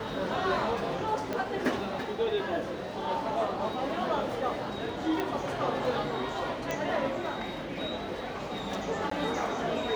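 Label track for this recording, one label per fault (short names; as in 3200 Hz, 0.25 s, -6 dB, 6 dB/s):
1.330000	1.330000	pop -18 dBFS
5.200000	5.200000	pop -18 dBFS
6.710000	6.710000	pop -17 dBFS
9.100000	9.110000	gap 14 ms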